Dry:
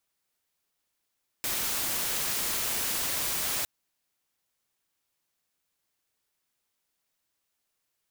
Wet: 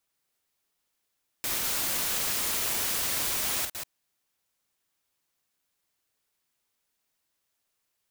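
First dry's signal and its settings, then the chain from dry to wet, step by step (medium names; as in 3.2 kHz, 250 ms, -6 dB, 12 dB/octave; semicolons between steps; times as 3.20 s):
noise white, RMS -30 dBFS 2.21 s
chunks repeated in reverse 137 ms, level -6 dB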